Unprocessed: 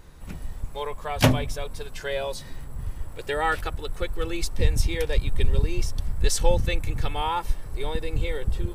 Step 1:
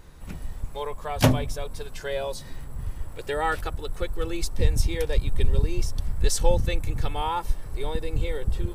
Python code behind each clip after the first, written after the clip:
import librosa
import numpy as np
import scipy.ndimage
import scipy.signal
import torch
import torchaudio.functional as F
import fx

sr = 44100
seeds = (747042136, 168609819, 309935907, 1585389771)

y = fx.dynamic_eq(x, sr, hz=2400.0, q=0.88, threshold_db=-45.0, ratio=4.0, max_db=-4)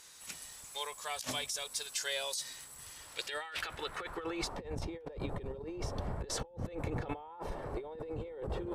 y = fx.filter_sweep_bandpass(x, sr, from_hz=7000.0, to_hz=600.0, start_s=2.85, end_s=4.77, q=1.1)
y = fx.over_compress(y, sr, threshold_db=-45.0, ratio=-1.0)
y = y * 10.0 ** (4.0 / 20.0)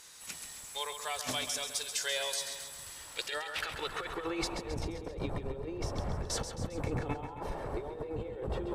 y = fx.echo_feedback(x, sr, ms=134, feedback_pct=57, wet_db=-9.0)
y = y * 10.0 ** (2.0 / 20.0)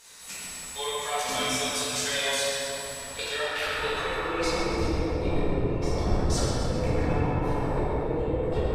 y = fx.room_shoebox(x, sr, seeds[0], volume_m3=180.0, walls='hard', distance_m=1.7)
y = y * 10.0 ** (-2.5 / 20.0)